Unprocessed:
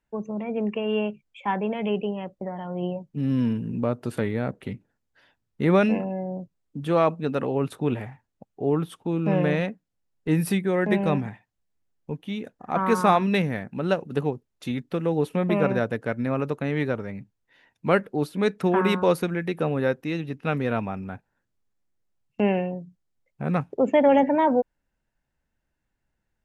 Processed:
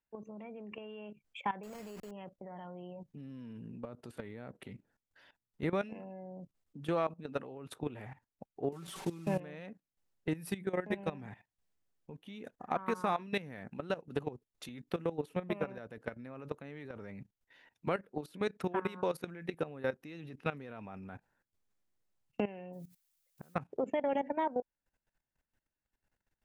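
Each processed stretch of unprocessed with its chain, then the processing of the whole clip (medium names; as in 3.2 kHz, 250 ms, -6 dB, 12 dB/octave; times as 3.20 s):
1.63–2.11 s: send-on-delta sampling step -30.5 dBFS + careless resampling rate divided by 6×, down filtered, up hold
8.72–9.40 s: one-bit delta coder 64 kbps, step -36.5 dBFS + comb 5.2 ms, depth 83%
22.72–23.55 s: resonant high shelf 2.5 kHz -14 dB, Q 1.5 + inverted gate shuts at -20 dBFS, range -31 dB + added noise blue -65 dBFS
whole clip: compression 4:1, threshold -30 dBFS; bass shelf 280 Hz -4.5 dB; level held to a coarse grid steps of 16 dB; trim +1.5 dB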